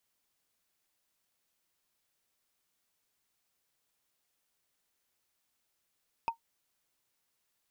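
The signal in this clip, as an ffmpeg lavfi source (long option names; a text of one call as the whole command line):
ffmpeg -f lavfi -i "aevalsrc='0.0708*pow(10,-3*t/0.11)*sin(2*PI*920*t)+0.0251*pow(10,-3*t/0.033)*sin(2*PI*2536.4*t)+0.00891*pow(10,-3*t/0.015)*sin(2*PI*4971.7*t)+0.00316*pow(10,-3*t/0.008)*sin(2*PI*8218.4*t)+0.00112*pow(10,-3*t/0.005)*sin(2*PI*12272.8*t)':duration=0.45:sample_rate=44100" out.wav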